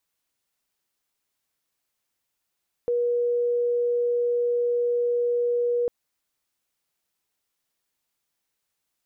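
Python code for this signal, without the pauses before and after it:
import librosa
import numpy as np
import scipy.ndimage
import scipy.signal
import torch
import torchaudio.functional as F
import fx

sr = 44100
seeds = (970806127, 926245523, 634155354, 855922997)

y = 10.0 ** (-20.5 / 20.0) * np.sin(2.0 * np.pi * (481.0 * (np.arange(round(3.0 * sr)) / sr)))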